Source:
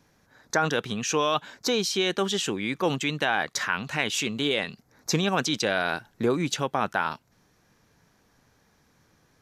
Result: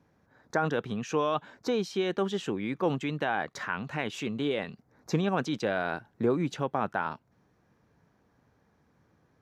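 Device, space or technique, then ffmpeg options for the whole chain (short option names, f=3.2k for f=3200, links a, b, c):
through cloth: -af "highpass=50,highshelf=f=2.5k:g=-16.5,volume=-1.5dB"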